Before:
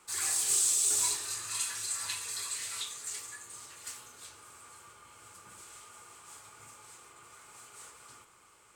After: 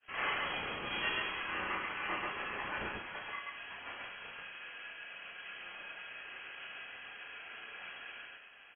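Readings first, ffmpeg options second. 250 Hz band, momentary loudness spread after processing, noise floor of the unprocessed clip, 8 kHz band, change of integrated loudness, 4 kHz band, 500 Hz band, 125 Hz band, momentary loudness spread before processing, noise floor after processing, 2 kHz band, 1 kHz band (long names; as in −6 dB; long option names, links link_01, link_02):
+10.0 dB, 12 LU, −61 dBFS, below −40 dB, −10.0 dB, −3.0 dB, +8.5 dB, +3.5 dB, 25 LU, −55 dBFS, +9.0 dB, +7.0 dB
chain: -filter_complex "[0:a]aeval=exprs='val(0)*sin(2*PI*450*n/s)':channel_layout=same,lowpass=frequency=2800:width_type=q:width=0.5098,lowpass=frequency=2800:width_type=q:width=0.6013,lowpass=frequency=2800:width_type=q:width=0.9,lowpass=frequency=2800:width_type=q:width=2.563,afreqshift=-3300,asplit=2[link_01][link_02];[link_02]aecho=0:1:32.07|137:0.708|0.891[link_03];[link_01][link_03]amix=inputs=2:normalize=0,agate=range=-33dB:threshold=-60dB:ratio=3:detection=peak,volume=8dB"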